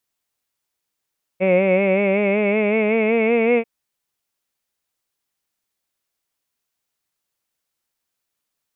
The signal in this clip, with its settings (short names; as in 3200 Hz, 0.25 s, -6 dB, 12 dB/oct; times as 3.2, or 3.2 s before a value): formant vowel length 2.24 s, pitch 183 Hz, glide +4.5 st, vibrato depth 0.65 st, F1 530 Hz, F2 2200 Hz, F3 2600 Hz